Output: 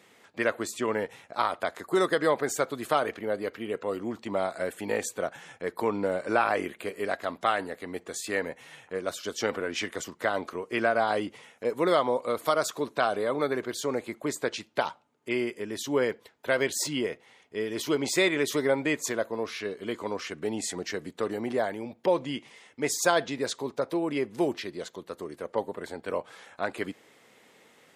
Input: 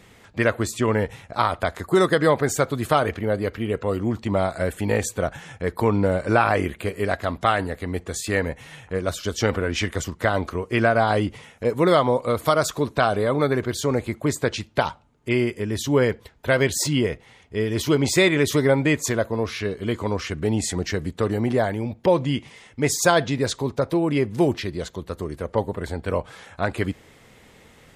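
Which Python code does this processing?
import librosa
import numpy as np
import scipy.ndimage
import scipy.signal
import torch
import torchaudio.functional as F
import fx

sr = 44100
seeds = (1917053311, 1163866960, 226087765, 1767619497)

y = scipy.signal.sosfilt(scipy.signal.butter(2, 270.0, 'highpass', fs=sr, output='sos'), x)
y = y * librosa.db_to_amplitude(-5.5)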